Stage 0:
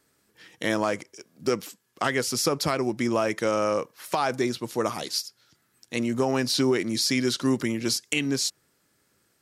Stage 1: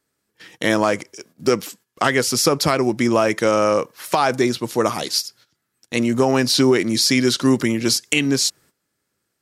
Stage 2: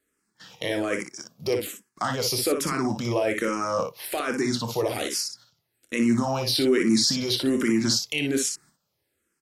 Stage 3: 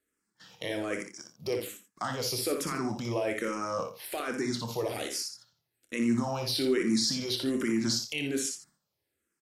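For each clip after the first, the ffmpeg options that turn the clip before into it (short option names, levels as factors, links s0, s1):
-af "agate=range=0.2:threshold=0.002:ratio=16:detection=peak,volume=2.37"
-filter_complex "[0:a]alimiter=limit=0.237:level=0:latency=1:release=32,asplit=2[s0][s1];[s1]aecho=0:1:27|59:0.282|0.501[s2];[s0][s2]amix=inputs=2:normalize=0,asplit=2[s3][s4];[s4]afreqshift=-1.2[s5];[s3][s5]amix=inputs=2:normalize=1"
-af "aecho=1:1:85:0.237,volume=0.473"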